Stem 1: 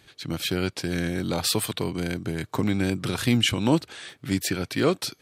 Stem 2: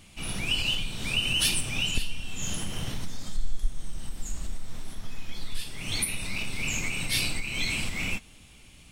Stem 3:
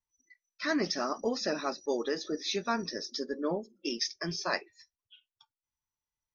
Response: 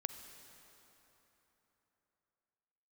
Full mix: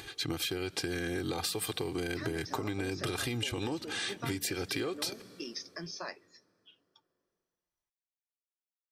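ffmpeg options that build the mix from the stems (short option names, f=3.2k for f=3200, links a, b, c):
-filter_complex "[0:a]lowshelf=f=170:g=-4,acompressor=mode=upward:threshold=-49dB:ratio=2.5,alimiter=limit=-16dB:level=0:latency=1:release=216,volume=2.5dB,asplit=2[a][b];[b]volume=-14dB[c];[2:a]acompressor=threshold=-37dB:ratio=3,adelay=1550,volume=-3dB,asplit=2[d][e];[e]volume=-21.5dB[f];[a]aecho=1:1:2.5:0.86,acompressor=threshold=-26dB:ratio=4,volume=0dB[g];[3:a]atrim=start_sample=2205[h];[c][f]amix=inputs=2:normalize=0[i];[i][h]afir=irnorm=-1:irlink=0[j];[d][g][j]amix=inputs=3:normalize=0,acompressor=threshold=-31dB:ratio=6"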